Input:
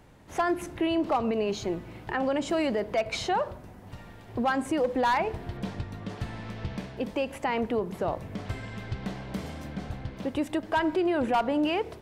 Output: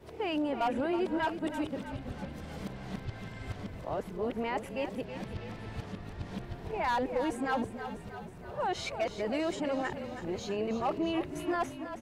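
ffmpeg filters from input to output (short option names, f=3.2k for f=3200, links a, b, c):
-filter_complex "[0:a]areverse,asplit=8[a][b][c][d][e][f][g][h];[b]adelay=322,afreqshift=-32,volume=-10dB[i];[c]adelay=644,afreqshift=-64,volume=-14.3dB[j];[d]adelay=966,afreqshift=-96,volume=-18.6dB[k];[e]adelay=1288,afreqshift=-128,volume=-22.9dB[l];[f]adelay=1610,afreqshift=-160,volume=-27.2dB[m];[g]adelay=1932,afreqshift=-192,volume=-31.5dB[n];[h]adelay=2254,afreqshift=-224,volume=-35.8dB[o];[a][i][j][k][l][m][n][o]amix=inputs=8:normalize=0,volume=-5.5dB"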